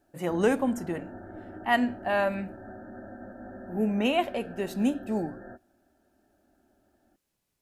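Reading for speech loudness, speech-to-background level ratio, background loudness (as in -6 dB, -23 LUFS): -28.5 LUFS, 16.0 dB, -44.5 LUFS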